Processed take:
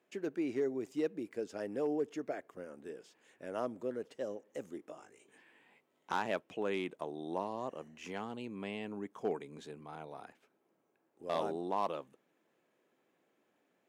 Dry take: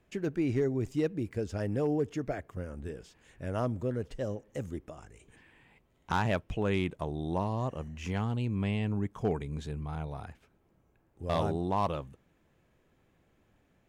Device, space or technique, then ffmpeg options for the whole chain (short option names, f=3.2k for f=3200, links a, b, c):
filter by subtraction: -filter_complex "[0:a]highpass=260,asplit=2[a][b];[b]lowpass=320,volume=-1[c];[a][c]amix=inputs=2:normalize=0,asettb=1/sr,asplit=3[d][e][f];[d]atrim=end=4.774[g];[e]atrim=start=4.77:end=6.14,asetpts=PTS-STARTPTS,afade=t=in:d=0.004:c=qsin,afade=t=out:st=1.366:d=0.004:c=qsin,asplit=2[h][i];[i]adelay=20,volume=-4dB[j];[h][j]amix=inputs=2:normalize=0,atrim=end_sample=60417[k];[f]atrim=start=6.136[l];[g][k]acrossfade=d=0.004:c1=hsin:c2=qsin[m];[m][l]acrossfade=d=0.004:c1=qsin:c2=hsin,volume=-5dB"